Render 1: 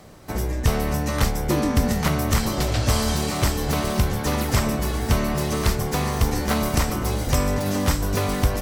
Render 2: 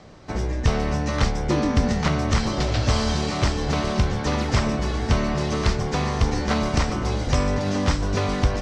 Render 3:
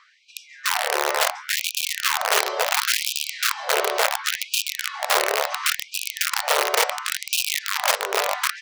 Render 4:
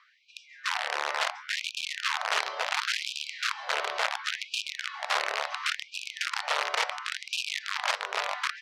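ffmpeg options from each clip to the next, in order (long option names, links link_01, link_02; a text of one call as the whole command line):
ffmpeg -i in.wav -af "lowpass=frequency=6200:width=0.5412,lowpass=frequency=6200:width=1.3066" out.wav
ffmpeg -i in.wav -af "bass=frequency=250:gain=4,treble=frequency=4000:gain=-11,aeval=exprs='(mod(4.73*val(0)+1,2)-1)/4.73':channel_layout=same,afftfilt=real='re*gte(b*sr/1024,350*pow(2400/350,0.5+0.5*sin(2*PI*0.71*pts/sr)))':imag='im*gte(b*sr/1024,350*pow(2400/350,0.5+0.5*sin(2*PI*0.71*pts/sr)))':win_size=1024:overlap=0.75,volume=2.5dB" out.wav
ffmpeg -i in.wav -af "highpass=800,lowpass=4600,volume=-5.5dB" out.wav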